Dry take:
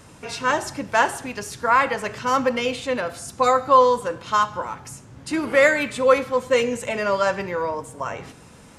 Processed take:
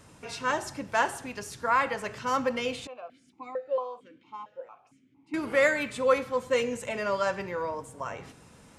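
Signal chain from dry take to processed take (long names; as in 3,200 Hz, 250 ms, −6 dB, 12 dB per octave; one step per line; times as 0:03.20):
0:02.87–0:05.34: formant filter that steps through the vowels 4.4 Hz
level −7 dB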